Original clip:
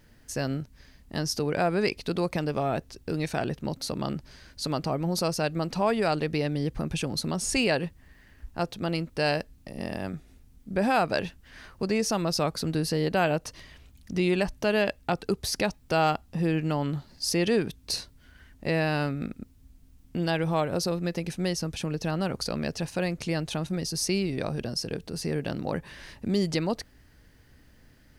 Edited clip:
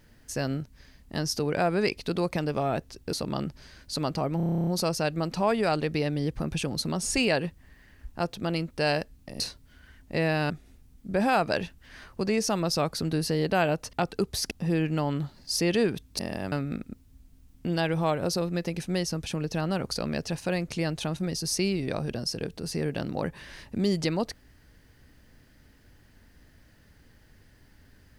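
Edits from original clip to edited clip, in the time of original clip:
3.13–3.82 s: delete
5.06 s: stutter 0.03 s, 11 plays
9.79–10.12 s: swap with 17.92–19.02 s
13.55–15.03 s: delete
15.61–16.24 s: delete

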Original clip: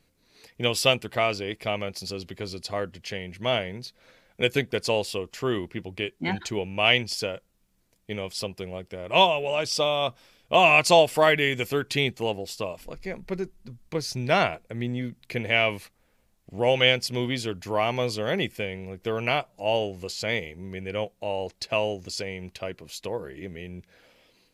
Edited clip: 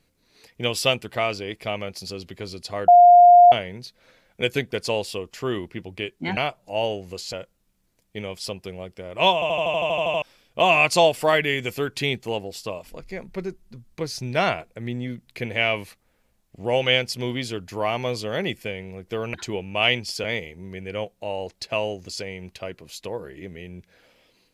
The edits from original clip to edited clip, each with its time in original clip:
2.88–3.52 s: bleep 706 Hz -7 dBFS
6.37–7.27 s: swap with 19.28–20.24 s
9.28 s: stutter in place 0.08 s, 11 plays

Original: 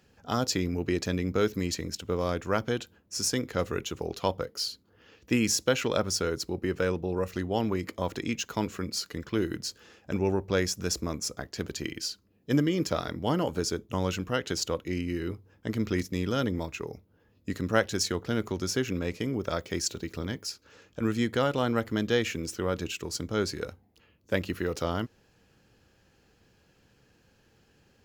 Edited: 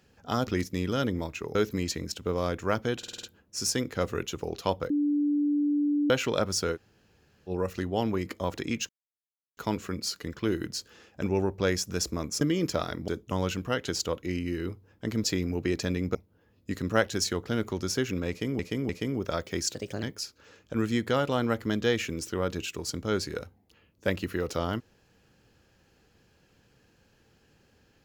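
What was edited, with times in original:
0.47–1.38 s: swap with 15.86–16.94 s
2.81 s: stutter 0.05 s, 6 plays
4.48–5.68 s: bleep 292 Hz -22.5 dBFS
6.33–7.07 s: room tone, crossfade 0.06 s
8.47 s: insert silence 0.68 s
11.31–12.58 s: delete
13.25–13.70 s: delete
19.08–19.38 s: loop, 3 plays
19.93–20.29 s: speed 125%

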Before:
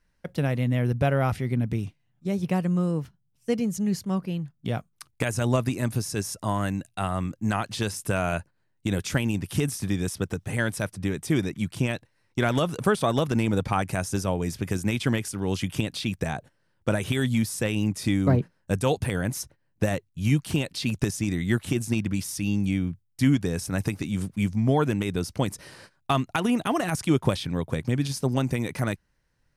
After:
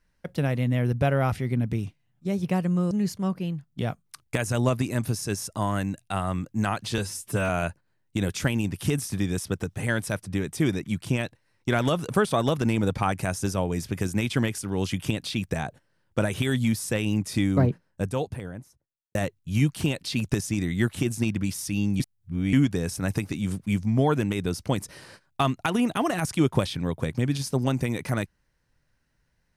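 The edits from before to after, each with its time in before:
2.91–3.78 s: delete
7.85–8.19 s: stretch 1.5×
18.18–19.85 s: studio fade out
22.70–23.23 s: reverse

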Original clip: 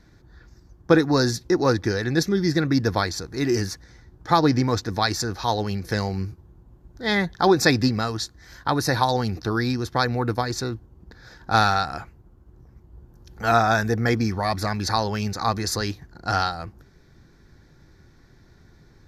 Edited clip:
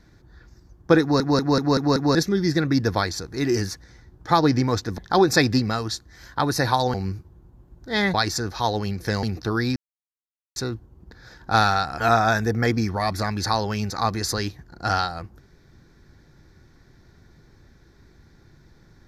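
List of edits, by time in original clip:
1.01 s: stutter in place 0.19 s, 6 plays
4.98–6.07 s: swap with 7.27–9.23 s
9.76–10.56 s: mute
12.00–13.43 s: delete

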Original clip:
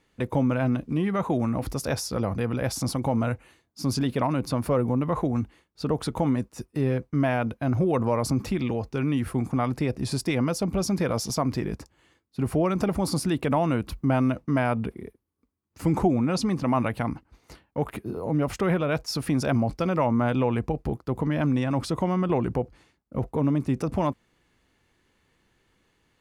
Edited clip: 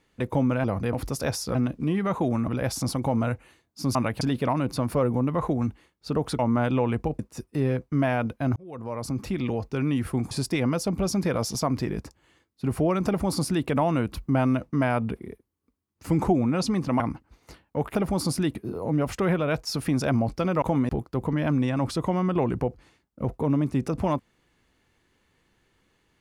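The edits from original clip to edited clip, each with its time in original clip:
0.64–1.57 s: swap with 2.19–2.48 s
6.13–6.40 s: swap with 20.03–20.83 s
7.77–8.73 s: fade in
9.52–10.06 s: delete
12.82–13.42 s: copy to 17.96 s
16.75–17.01 s: move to 3.95 s

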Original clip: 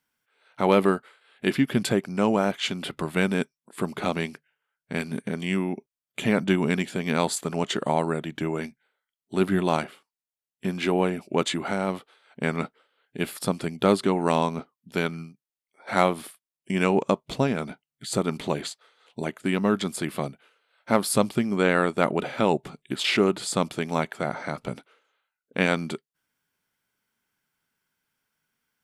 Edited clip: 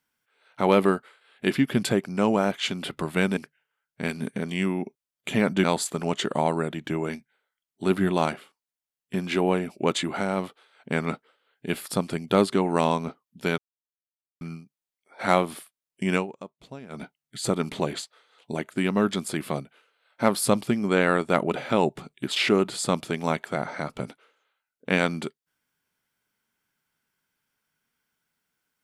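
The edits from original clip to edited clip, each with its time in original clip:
3.37–4.28 s: delete
6.55–7.15 s: delete
15.09 s: insert silence 0.83 s
16.83–17.69 s: dip -17.5 dB, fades 0.12 s

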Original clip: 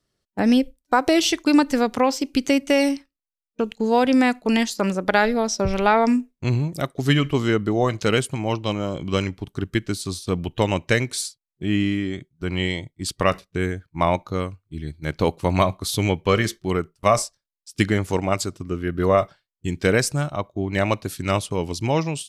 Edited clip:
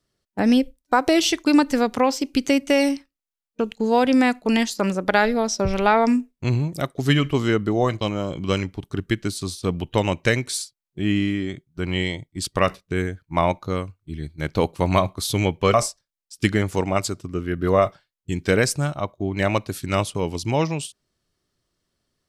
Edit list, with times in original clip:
8.01–8.65 s: delete
16.38–17.10 s: delete

